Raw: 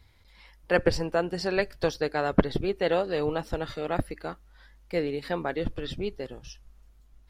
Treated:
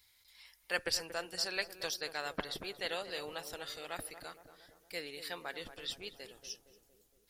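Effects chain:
first-order pre-emphasis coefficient 0.97
feedback echo with a low-pass in the loop 232 ms, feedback 63%, low-pass 1,100 Hz, level −10 dB
level +5.5 dB

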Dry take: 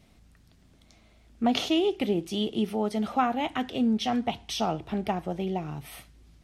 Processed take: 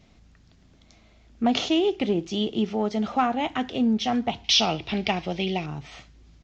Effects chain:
0:04.44–0:05.66: flat-topped bell 3,400 Hz +13 dB
in parallel at −9.5 dB: gain into a clipping stage and back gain 20 dB
on the sum: downsampling to 16,000 Hz

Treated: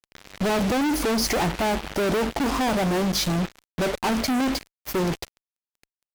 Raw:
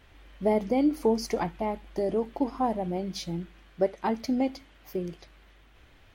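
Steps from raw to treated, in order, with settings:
fuzz pedal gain 51 dB, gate −46 dBFS
level −8 dB

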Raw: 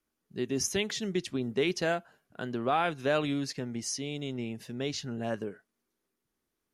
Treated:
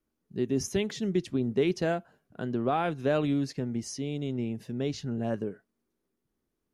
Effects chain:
tilt shelving filter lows +5.5 dB, about 710 Hz

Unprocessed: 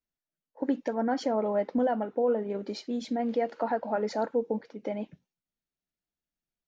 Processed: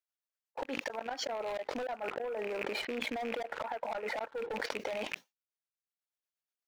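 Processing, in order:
loose part that buzzes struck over −43 dBFS, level −34 dBFS
0:01.92–0:04.55: low-pass filter 2,600 Hz 24 dB per octave
downward expander −50 dBFS
high-pass filter 680 Hz 12 dB per octave
leveller curve on the samples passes 2
transient designer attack +1 dB, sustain −5 dB
gate with flip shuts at −21 dBFS, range −41 dB
soft clipping −30.5 dBFS, distortion −10 dB
amplitude tremolo 8.3 Hz, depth 49%
envelope flattener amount 100%
level −4 dB

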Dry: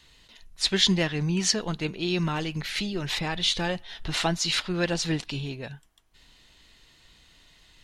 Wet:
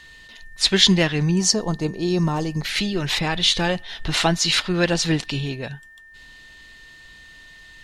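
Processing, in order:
0:01.31–0:02.65: flat-topped bell 2,300 Hz −12.5 dB
steady tone 1,800 Hz −51 dBFS
level +6.5 dB

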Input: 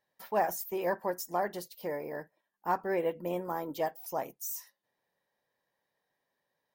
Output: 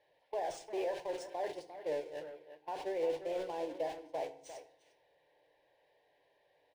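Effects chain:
converter with a step at zero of −33.5 dBFS
noise gate −32 dBFS, range −28 dB
low-shelf EQ 180 Hz −11 dB
brickwall limiter −29 dBFS, peak gain reduction 11.5 dB
high-frequency loss of the air 63 metres
phaser with its sweep stopped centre 530 Hz, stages 4
feedback delay network reverb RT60 0.7 s, low-frequency decay 1.5×, high-frequency decay 0.75×, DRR 9.5 dB
low-pass that shuts in the quiet parts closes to 3,000 Hz, open at −36 dBFS
far-end echo of a speakerphone 350 ms, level −10 dB
linearly interpolated sample-rate reduction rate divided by 3×
level +1.5 dB

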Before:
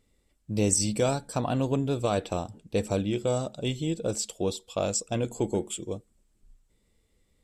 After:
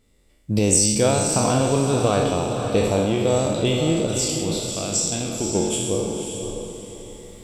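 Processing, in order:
peak hold with a decay on every bin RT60 1.00 s
camcorder AGC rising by 9.4 dB per second
0:04.05–0:05.55: octave-band graphic EQ 125/500/1,000/2,000 Hz −5/−10/−6/−4 dB
feedback delay with all-pass diffusion 527 ms, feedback 40%, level −6 dB
level +4 dB

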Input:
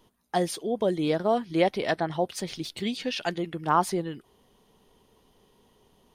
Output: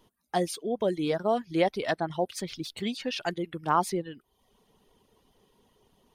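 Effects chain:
reverb reduction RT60 0.63 s
level −1.5 dB

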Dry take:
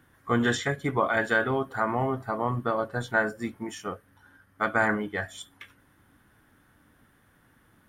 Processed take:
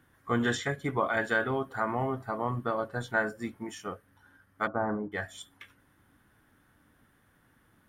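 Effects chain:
0:04.67–0:05.12: low-pass filter 1,100 Hz 24 dB per octave
level −3.5 dB

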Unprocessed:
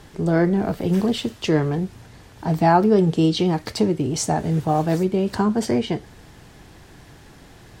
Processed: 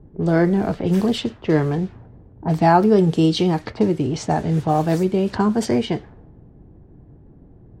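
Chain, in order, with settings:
low-pass that shuts in the quiet parts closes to 310 Hz, open at −16.5 dBFS
level +1.5 dB

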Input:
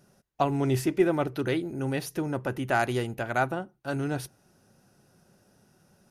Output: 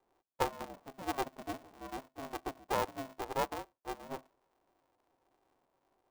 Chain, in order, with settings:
Chebyshev band-pass filter 460–950 Hz, order 4
ring modulator with a square carrier 200 Hz
level −5 dB

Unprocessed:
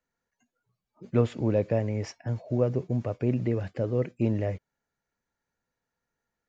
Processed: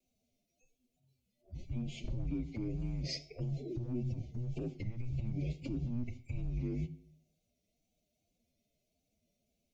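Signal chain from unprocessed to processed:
Chebyshev band-stop filter 1,000–2,400 Hz, order 5
downward compressor 5 to 1, threshold −30 dBFS, peak gain reduction 11.5 dB
transient designer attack −8 dB, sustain −1 dB
brickwall limiter −35 dBFS, peak gain reduction 11.5 dB
frequency shifter −250 Hz
phase-vocoder stretch with locked phases 1.5×
pitch vibrato 1.8 Hz 47 cents
convolution reverb RT60 0.65 s, pre-delay 3 ms, DRR 11 dB
wow of a warped record 33 1/3 rpm, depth 100 cents
level +7 dB

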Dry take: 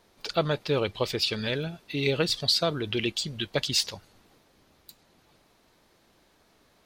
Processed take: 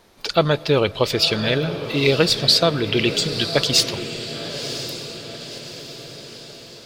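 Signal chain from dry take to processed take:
feedback delay with all-pass diffusion 1,021 ms, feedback 52%, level −10 dB
on a send at −21 dB: convolution reverb RT60 3.5 s, pre-delay 92 ms
on the sum: level +8.5 dB

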